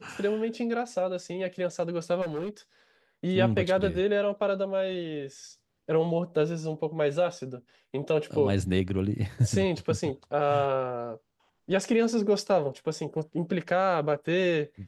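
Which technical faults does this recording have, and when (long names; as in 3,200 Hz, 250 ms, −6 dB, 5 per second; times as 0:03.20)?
0:02.21–0:02.49: clipping −28.5 dBFS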